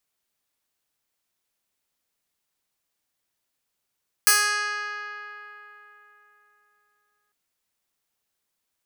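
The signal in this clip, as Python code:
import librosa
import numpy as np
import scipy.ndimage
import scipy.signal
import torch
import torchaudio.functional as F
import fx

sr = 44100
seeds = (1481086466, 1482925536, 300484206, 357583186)

y = fx.pluck(sr, length_s=3.05, note=68, decay_s=3.73, pick=0.11, brightness='bright')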